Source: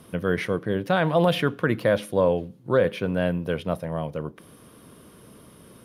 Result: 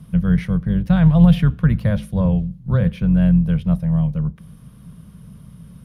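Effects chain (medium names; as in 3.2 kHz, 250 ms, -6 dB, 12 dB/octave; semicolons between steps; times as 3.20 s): octave divider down 2 oct, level -5 dB; resonant low shelf 240 Hz +12 dB, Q 3; trim -4.5 dB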